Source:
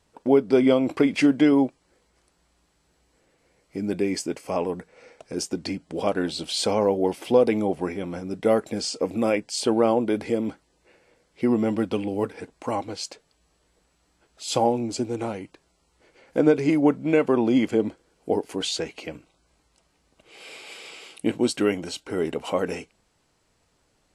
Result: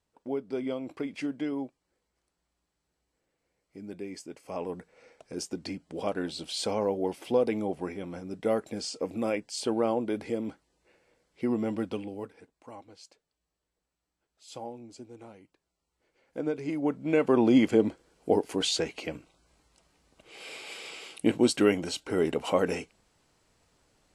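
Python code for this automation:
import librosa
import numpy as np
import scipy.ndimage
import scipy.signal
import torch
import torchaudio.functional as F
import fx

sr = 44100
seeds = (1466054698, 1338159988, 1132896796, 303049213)

y = fx.gain(x, sr, db=fx.line((4.28, -14.5), (4.73, -7.0), (11.89, -7.0), (12.54, -19.0), (15.37, -19.0), (16.72, -11.5), (17.43, -0.5)))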